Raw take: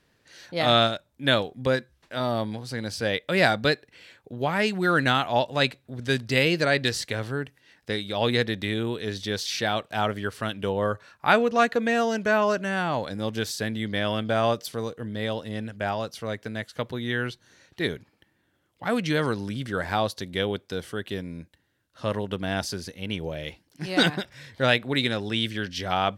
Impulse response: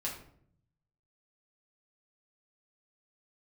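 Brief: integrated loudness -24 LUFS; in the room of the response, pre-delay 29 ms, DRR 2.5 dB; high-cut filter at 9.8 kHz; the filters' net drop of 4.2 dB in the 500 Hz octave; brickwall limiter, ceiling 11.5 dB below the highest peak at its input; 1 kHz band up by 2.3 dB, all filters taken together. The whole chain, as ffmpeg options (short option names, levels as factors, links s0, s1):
-filter_complex "[0:a]lowpass=9800,equalizer=f=500:t=o:g=-7.5,equalizer=f=1000:t=o:g=6,alimiter=limit=0.2:level=0:latency=1,asplit=2[s0][s1];[1:a]atrim=start_sample=2205,adelay=29[s2];[s1][s2]afir=irnorm=-1:irlink=0,volume=0.562[s3];[s0][s3]amix=inputs=2:normalize=0,volume=1.33"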